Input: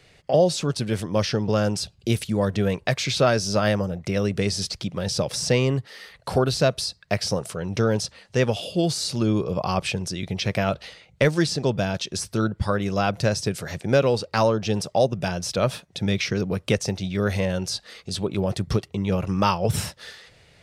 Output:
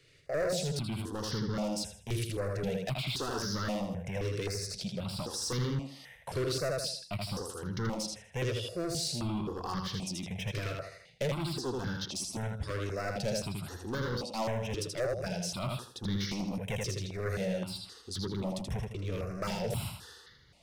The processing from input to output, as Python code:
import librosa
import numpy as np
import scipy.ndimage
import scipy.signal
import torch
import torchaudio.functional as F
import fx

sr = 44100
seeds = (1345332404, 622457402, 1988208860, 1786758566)

y = fx.echo_feedback(x, sr, ms=80, feedback_pct=34, wet_db=-4)
y = np.clip(y, -10.0 ** (-20.0 / 20.0), 10.0 ** (-20.0 / 20.0))
y = fx.phaser_held(y, sr, hz=3.8, low_hz=210.0, high_hz=2500.0)
y = y * librosa.db_to_amplitude(-7.0)